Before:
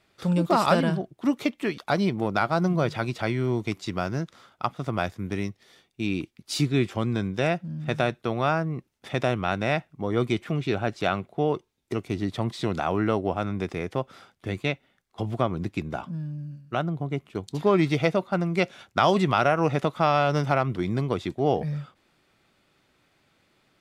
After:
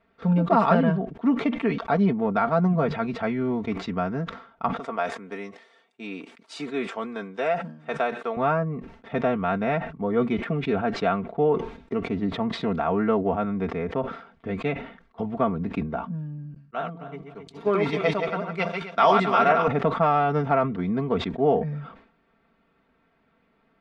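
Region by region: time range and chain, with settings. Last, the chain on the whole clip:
4.79–8.37 HPF 450 Hz + bell 8600 Hz +14.5 dB 0.99 oct
16.54–19.68 regenerating reverse delay 0.134 s, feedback 50%, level -3.5 dB + RIAA curve recording + three-band expander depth 70%
whole clip: LPF 1700 Hz 12 dB/oct; comb 4.4 ms, depth 76%; sustainer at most 100 dB/s

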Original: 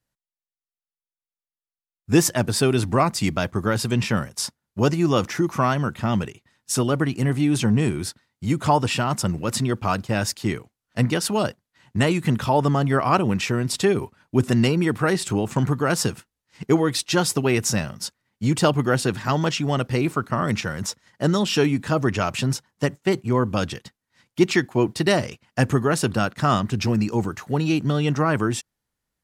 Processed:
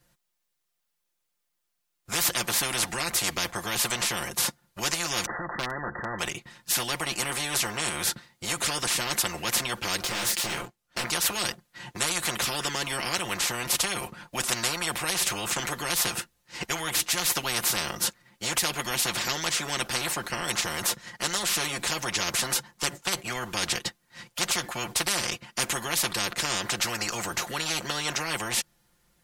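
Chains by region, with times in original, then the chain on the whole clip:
5.26–6.19 brick-wall FIR low-pass 2000 Hz + hard clip -10.5 dBFS
10.02–11.04 sample leveller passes 3 + compressor 2:1, threshold -32 dBFS + detuned doubles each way 41 cents
whole clip: comb 5.7 ms, depth 74%; spectral compressor 10:1; gain -5 dB

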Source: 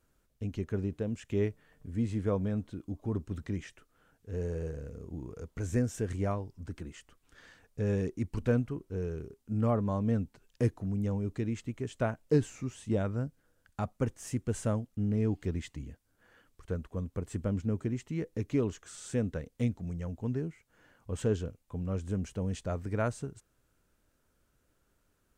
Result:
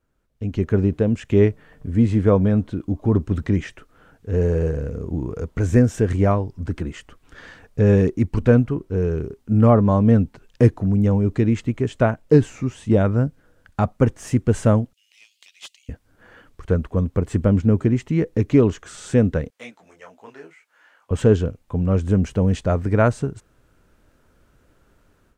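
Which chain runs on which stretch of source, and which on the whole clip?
14.93–15.89 steep high-pass 2700 Hz + Doppler distortion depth 0.24 ms
19.5–21.11 HPF 920 Hz + detuned doubles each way 22 cents
whole clip: high shelf 4500 Hz -11 dB; AGC gain up to 15.5 dB

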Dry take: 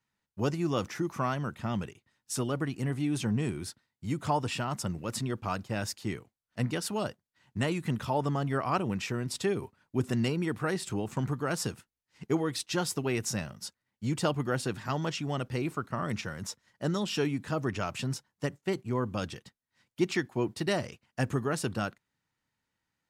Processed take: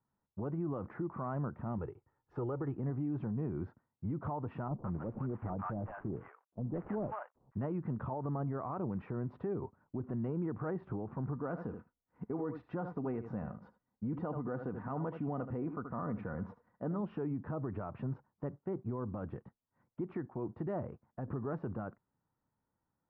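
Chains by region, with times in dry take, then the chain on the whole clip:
1.78–2.76 LPF 10000 Hz + bell 210 Hz -7 dB 0.44 oct + comb 2.3 ms, depth 47%
4.68–7.57 CVSD 16 kbps + bands offset in time lows, highs 0.16 s, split 820 Hz
11.36–17.01 comb 4.1 ms, depth 35% + echo 77 ms -14 dB
20.84–21.28 high shelf 3200 Hz -9 dB + compressor, threshold -35 dBFS
whole clip: LPF 1200 Hz 24 dB/oct; compressor 2.5:1, threshold -31 dBFS; limiter -31 dBFS; gain +1.5 dB

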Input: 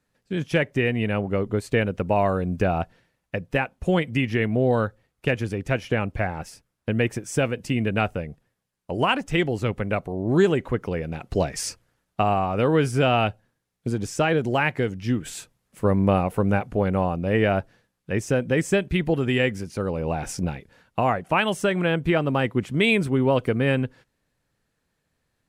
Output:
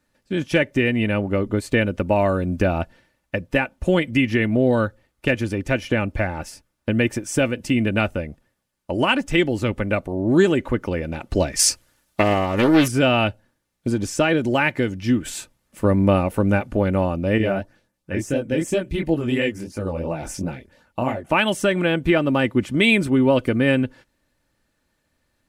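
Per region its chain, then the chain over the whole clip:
11.59–12.88 high shelf 3000 Hz +11 dB + Doppler distortion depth 0.47 ms
17.38–21.28 LFO notch saw up 5.4 Hz 850–5200 Hz + chorus 2.9 Hz, delay 18 ms, depth 7.8 ms
whole clip: comb 3.4 ms, depth 43%; dynamic EQ 890 Hz, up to -4 dB, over -31 dBFS, Q 0.93; gain +4 dB

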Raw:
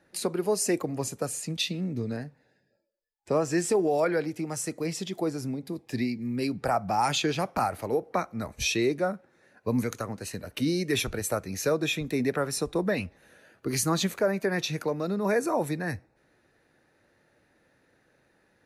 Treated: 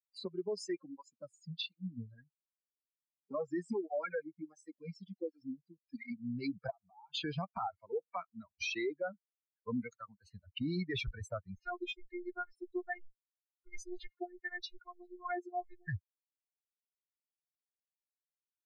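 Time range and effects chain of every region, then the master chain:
0.68–6.11 comb 3.7 ms, depth 39% + tape flanging out of phase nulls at 1.4 Hz, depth 4.4 ms
6.7–7.15 rippled Chebyshev low-pass 3700 Hz, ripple 9 dB + compressor, threshold -37 dBFS
7.67–10.25 HPF 190 Hz 6 dB/oct + hard clip -19 dBFS
11.55–15.88 robotiser 355 Hz + photocell phaser 2.5 Hz
whole clip: per-bin expansion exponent 3; LPF 4500 Hz 24 dB/oct; limiter -31.5 dBFS; gain +2.5 dB

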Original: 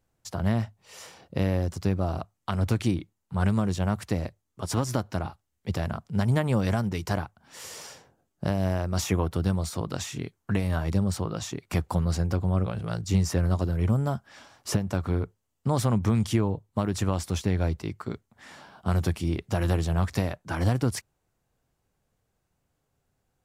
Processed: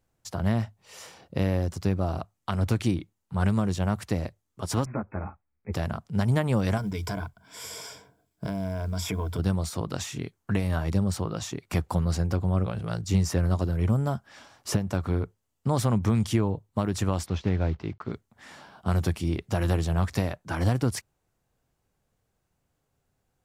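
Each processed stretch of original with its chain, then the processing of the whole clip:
4.85–5.73 brick-wall FIR low-pass 2600 Hz + ensemble effect
6.77–9.39 ripple EQ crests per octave 1.7, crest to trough 12 dB + compressor 3:1, threshold -28 dBFS + companded quantiser 8-bit
17.26–18.13 block floating point 5-bit + air absorption 210 m
whole clip: dry

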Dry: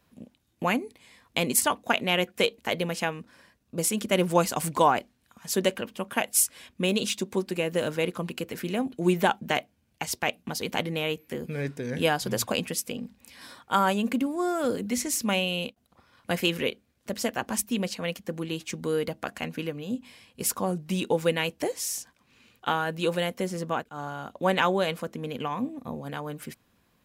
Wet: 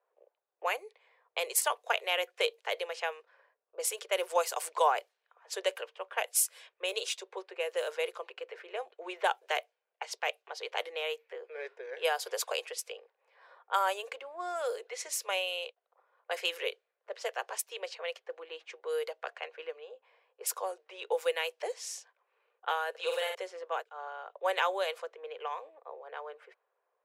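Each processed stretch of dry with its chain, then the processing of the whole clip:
22.9–23.35 HPF 430 Hz 24 dB/oct + flutter echo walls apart 8.3 m, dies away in 0.67 s
whole clip: steep high-pass 420 Hz 72 dB/oct; low-pass opened by the level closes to 1000 Hz, open at -24.5 dBFS; gain -5 dB

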